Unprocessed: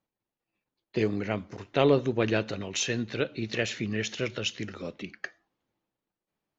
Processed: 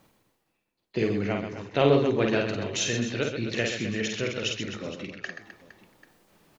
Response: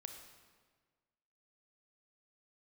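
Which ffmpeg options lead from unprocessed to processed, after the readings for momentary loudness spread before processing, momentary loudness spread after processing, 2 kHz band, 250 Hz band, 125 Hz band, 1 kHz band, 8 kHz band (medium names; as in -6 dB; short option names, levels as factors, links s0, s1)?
15 LU, 15 LU, +2.0 dB, +2.0 dB, +2.0 dB, +2.5 dB, no reading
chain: -af "areverse,acompressor=mode=upward:threshold=0.00708:ratio=2.5,areverse,aecho=1:1:50|130|258|462.8|790.5:0.631|0.398|0.251|0.158|0.1"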